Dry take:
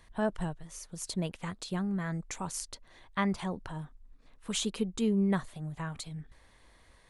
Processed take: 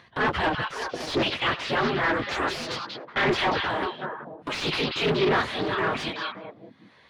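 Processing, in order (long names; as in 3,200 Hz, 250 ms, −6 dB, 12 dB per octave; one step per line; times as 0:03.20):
random phases in long frames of 50 ms
gate on every frequency bin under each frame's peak −10 dB weak
high-pass filter 68 Hz 24 dB per octave
noise gate −53 dBFS, range −19 dB
high-shelf EQ 2,000 Hz +11 dB
transient designer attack −5 dB, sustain +4 dB
in parallel at +1.5 dB: output level in coarse steps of 20 dB
on the sum: leveller curve on the samples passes 5
upward compression, threshold −27 dBFS
high-frequency loss of the air 300 metres
on a send: echo through a band-pass that steps 188 ms, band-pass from 3,400 Hz, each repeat −1.4 octaves, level −1.5 dB
on the sum: highs frequency-modulated by the lows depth 0.38 ms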